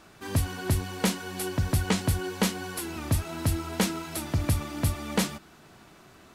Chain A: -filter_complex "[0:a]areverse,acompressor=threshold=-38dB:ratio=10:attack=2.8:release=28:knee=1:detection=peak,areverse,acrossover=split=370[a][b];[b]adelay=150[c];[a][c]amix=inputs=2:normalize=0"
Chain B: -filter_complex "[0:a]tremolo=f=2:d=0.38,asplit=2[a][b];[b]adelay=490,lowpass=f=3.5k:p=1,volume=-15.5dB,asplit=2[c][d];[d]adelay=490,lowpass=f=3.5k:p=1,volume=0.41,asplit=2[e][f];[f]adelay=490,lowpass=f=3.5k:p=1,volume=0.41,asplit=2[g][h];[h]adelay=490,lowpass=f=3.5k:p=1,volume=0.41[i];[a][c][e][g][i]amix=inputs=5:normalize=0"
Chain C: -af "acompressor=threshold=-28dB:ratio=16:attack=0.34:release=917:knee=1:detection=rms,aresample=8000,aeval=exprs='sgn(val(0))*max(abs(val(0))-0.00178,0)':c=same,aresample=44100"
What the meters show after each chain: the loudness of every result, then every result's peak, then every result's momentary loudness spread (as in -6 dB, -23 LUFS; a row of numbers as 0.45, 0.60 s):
-41.0, -31.0, -41.5 LUFS; -27.5, -14.5, -26.0 dBFS; 6, 9, 6 LU